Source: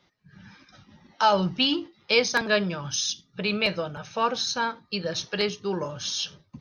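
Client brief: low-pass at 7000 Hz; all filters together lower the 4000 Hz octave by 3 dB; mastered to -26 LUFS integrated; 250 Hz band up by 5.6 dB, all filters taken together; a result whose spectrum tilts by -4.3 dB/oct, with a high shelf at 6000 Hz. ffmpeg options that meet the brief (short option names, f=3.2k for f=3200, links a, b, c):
-af "lowpass=7k,equalizer=f=250:t=o:g=7.5,equalizer=f=4k:t=o:g=-5,highshelf=f=6k:g=4,volume=-1dB"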